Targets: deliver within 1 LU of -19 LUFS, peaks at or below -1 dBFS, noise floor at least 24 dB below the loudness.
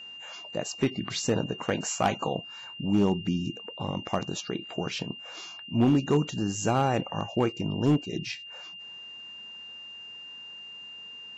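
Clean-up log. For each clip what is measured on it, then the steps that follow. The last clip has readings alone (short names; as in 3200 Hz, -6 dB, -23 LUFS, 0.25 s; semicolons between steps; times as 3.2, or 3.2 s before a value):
clipped 0.4%; flat tops at -16.0 dBFS; steady tone 2800 Hz; tone level -41 dBFS; loudness -29.0 LUFS; peak -16.0 dBFS; loudness target -19.0 LUFS
-> clip repair -16 dBFS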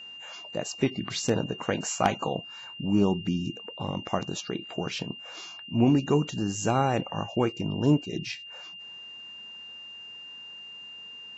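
clipped 0.0%; steady tone 2800 Hz; tone level -41 dBFS
-> notch 2800 Hz, Q 30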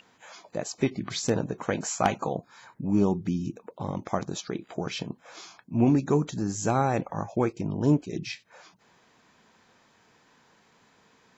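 steady tone none; loudness -28.5 LUFS; peak -7.0 dBFS; loudness target -19.0 LUFS
-> gain +9.5 dB; limiter -1 dBFS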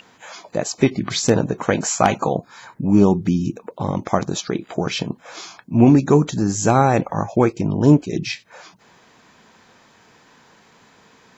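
loudness -19.0 LUFS; peak -1.0 dBFS; noise floor -53 dBFS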